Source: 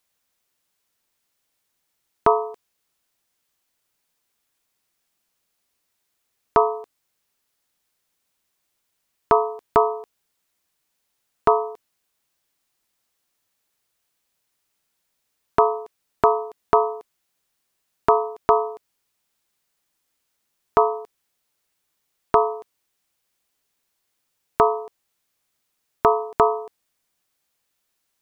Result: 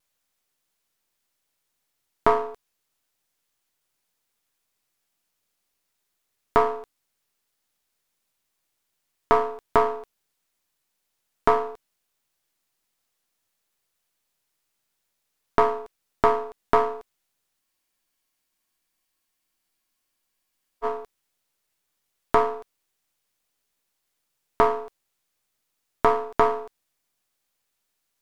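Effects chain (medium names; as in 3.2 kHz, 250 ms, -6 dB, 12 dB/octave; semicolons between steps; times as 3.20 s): partial rectifier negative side -7 dB; vibrato 0.36 Hz 10 cents; spectral freeze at 17.62 s, 3.23 s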